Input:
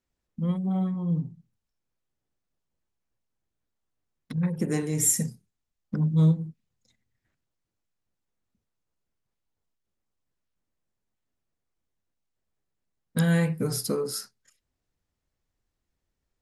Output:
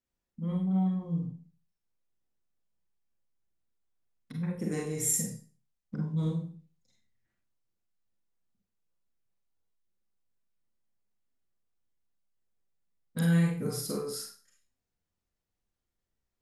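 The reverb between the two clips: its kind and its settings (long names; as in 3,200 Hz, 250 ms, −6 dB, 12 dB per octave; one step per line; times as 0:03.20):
four-comb reverb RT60 0.38 s, combs from 32 ms, DRR −1 dB
level −8.5 dB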